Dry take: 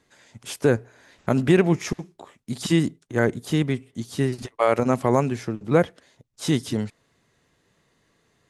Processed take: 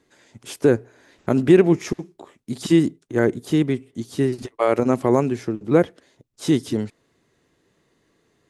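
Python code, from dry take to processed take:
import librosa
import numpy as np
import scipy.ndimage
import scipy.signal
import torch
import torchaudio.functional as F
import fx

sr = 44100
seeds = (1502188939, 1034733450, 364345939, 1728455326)

y = fx.peak_eq(x, sr, hz=340.0, db=7.5, octaves=0.96)
y = y * librosa.db_to_amplitude(-1.5)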